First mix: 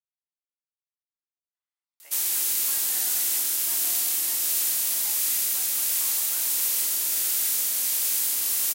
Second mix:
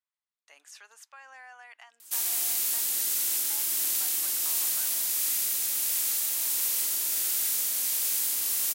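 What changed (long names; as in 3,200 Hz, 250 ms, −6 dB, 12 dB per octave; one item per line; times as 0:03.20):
speech: entry −1.55 s
background −3.0 dB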